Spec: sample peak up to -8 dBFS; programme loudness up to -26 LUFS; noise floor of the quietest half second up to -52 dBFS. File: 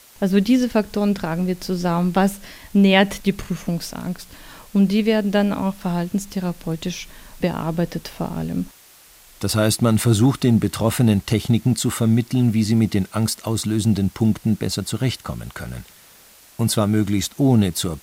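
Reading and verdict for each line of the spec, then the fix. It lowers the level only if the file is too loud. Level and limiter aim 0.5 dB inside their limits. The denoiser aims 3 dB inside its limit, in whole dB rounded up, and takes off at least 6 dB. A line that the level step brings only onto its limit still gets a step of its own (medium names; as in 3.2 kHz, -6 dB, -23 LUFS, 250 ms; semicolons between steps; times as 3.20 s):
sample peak -4.0 dBFS: fail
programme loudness -20.5 LUFS: fail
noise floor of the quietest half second -49 dBFS: fail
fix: trim -6 dB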